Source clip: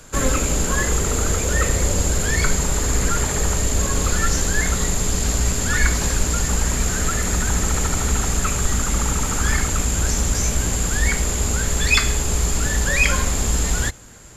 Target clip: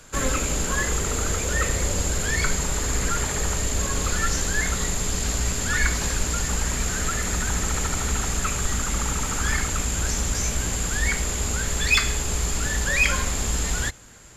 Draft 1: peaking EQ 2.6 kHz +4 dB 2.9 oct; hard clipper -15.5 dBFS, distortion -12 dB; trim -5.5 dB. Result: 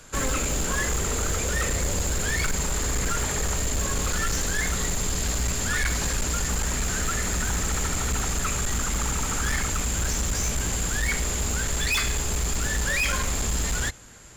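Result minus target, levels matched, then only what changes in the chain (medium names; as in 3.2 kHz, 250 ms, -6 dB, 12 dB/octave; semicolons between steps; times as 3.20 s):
hard clipper: distortion +20 dB
change: hard clipper -5.5 dBFS, distortion -32 dB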